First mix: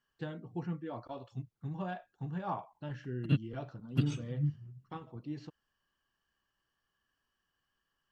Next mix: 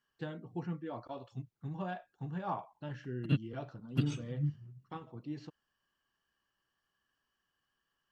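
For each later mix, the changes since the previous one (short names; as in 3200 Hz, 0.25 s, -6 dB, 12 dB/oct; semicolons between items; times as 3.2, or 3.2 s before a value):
master: add low shelf 73 Hz -7.5 dB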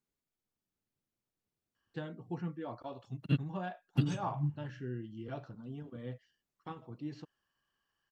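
first voice: entry +1.75 s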